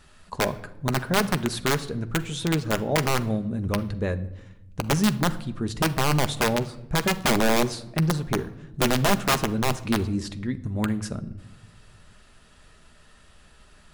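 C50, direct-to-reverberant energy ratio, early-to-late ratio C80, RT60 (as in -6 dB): 16.5 dB, 9.0 dB, 19.5 dB, 0.90 s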